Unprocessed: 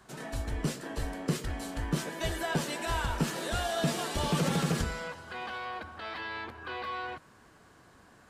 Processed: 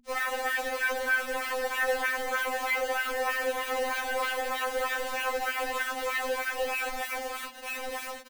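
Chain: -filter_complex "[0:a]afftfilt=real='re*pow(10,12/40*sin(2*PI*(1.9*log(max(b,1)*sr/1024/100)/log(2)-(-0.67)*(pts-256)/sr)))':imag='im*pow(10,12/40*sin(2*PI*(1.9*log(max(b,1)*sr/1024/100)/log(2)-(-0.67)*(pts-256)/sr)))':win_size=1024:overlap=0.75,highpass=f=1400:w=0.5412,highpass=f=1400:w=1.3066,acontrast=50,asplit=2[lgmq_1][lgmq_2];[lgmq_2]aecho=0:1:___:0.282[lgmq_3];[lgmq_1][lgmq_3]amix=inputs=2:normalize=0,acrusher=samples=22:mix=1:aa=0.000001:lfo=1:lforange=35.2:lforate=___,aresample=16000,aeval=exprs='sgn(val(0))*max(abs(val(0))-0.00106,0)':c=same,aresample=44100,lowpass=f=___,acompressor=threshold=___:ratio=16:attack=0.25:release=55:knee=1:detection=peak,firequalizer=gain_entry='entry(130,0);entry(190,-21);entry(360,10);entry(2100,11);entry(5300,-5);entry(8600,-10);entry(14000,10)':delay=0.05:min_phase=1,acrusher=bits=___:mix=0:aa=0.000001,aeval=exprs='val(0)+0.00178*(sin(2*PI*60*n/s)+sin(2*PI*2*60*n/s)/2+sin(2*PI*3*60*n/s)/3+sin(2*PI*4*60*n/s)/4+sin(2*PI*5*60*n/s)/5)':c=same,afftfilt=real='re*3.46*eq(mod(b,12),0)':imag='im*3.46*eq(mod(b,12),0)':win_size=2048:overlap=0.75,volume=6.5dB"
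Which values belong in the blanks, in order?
1002, 3.2, 3900, -37dB, 6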